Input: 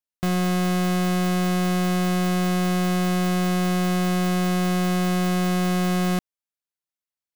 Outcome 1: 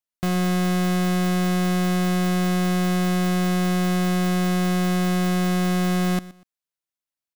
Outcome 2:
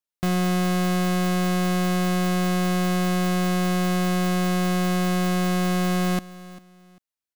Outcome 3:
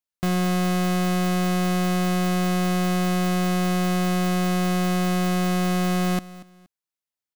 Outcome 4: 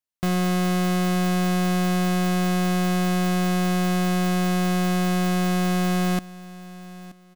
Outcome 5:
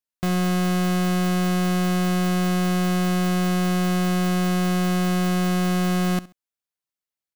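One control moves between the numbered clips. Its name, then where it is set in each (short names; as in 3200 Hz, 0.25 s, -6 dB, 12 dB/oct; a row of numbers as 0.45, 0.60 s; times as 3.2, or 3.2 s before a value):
feedback echo, time: 121, 396, 236, 927, 67 ms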